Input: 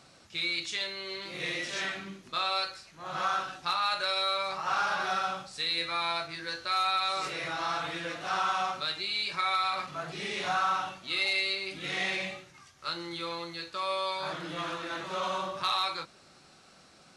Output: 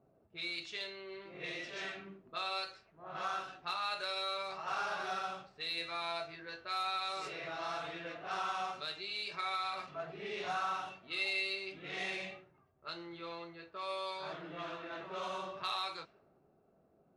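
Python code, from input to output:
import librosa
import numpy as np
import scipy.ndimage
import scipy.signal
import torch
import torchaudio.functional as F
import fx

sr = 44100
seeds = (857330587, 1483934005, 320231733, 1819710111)

y = fx.cheby_harmonics(x, sr, harmonics=(3,), levels_db=(-27,), full_scale_db=-18.5)
y = fx.env_lowpass(y, sr, base_hz=530.0, full_db=-28.5)
y = fx.small_body(y, sr, hz=(420.0, 650.0, 2700.0), ring_ms=45, db=9)
y = F.gain(torch.from_numpy(y), -8.0).numpy()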